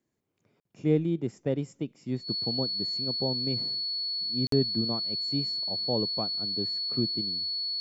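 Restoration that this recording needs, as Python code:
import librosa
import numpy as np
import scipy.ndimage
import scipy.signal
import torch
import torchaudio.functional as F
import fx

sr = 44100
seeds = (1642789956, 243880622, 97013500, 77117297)

y = fx.notch(x, sr, hz=4400.0, q=30.0)
y = fx.fix_interpolate(y, sr, at_s=(0.6, 4.47), length_ms=53.0)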